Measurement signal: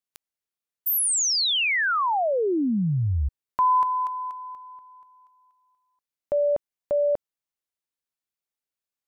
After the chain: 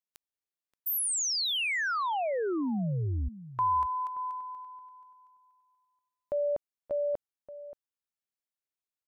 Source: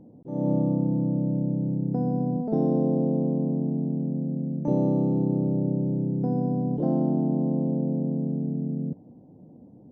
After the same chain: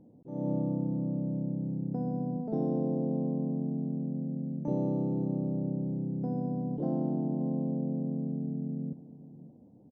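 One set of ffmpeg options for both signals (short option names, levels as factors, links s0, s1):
-filter_complex "[0:a]asplit=2[s0][s1];[s1]adelay=577.3,volume=0.178,highshelf=f=4000:g=-13[s2];[s0][s2]amix=inputs=2:normalize=0,volume=0.447"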